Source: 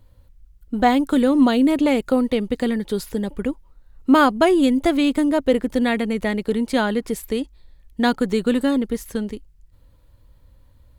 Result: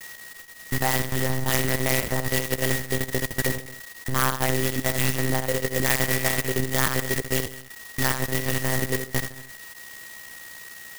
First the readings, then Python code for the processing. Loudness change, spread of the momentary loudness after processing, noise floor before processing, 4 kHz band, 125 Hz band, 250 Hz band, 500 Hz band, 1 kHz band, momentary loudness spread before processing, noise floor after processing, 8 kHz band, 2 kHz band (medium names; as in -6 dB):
-4.5 dB, 16 LU, -53 dBFS, +1.0 dB, no reading, -13.5 dB, -7.0 dB, -7.0 dB, 12 LU, -43 dBFS, +12.0 dB, +1.5 dB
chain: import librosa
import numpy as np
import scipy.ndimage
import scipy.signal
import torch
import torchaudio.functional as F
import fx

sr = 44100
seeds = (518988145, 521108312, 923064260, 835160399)

y = fx.hum_notches(x, sr, base_hz=50, count=5)
y = y + 10.0 ** (-25.0 / 20.0) * np.sin(2.0 * np.pi * 1900.0 * np.arange(len(y)) / sr)
y = fx.high_shelf(y, sr, hz=2400.0, db=11.0)
y = fx.transient(y, sr, attack_db=9, sustain_db=-9)
y = fx.level_steps(y, sr, step_db=21)
y = fx.tilt_eq(y, sr, slope=2.5)
y = fx.echo_feedback(y, sr, ms=73, feedback_pct=38, wet_db=-6.5)
y = fx.lpc_monotone(y, sr, seeds[0], pitch_hz=130.0, order=8)
y = fx.clock_jitter(y, sr, seeds[1], jitter_ms=0.076)